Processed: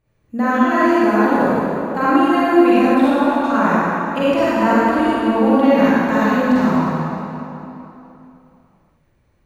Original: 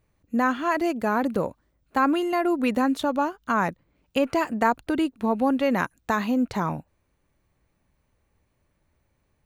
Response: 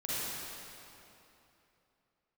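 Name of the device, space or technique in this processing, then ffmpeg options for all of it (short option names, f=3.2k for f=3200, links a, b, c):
swimming-pool hall: -filter_complex "[1:a]atrim=start_sample=2205[a];[0:a][a]afir=irnorm=-1:irlink=0,highshelf=f=5.6k:g=-6.5,asettb=1/sr,asplit=3[b][c][d];[b]atrim=end=2.944[e];[c]atrim=start=2.94:end=3.44,asetpts=PTS-STARTPTS,afade=t=in:d=0.004:c=qsin,afade=t=out:st=0.496:d=0.004:c=qsin,equalizer=f=6.1k:w=1.2:g=-8.5[f];[d]atrim=start=3.436[g];[e][f]acrossfade=d=0.004:c1=hsin:c2=qsin[h];[h][g]acrossfade=d=0.004:c1=qsin:c2=hsin,volume=3dB"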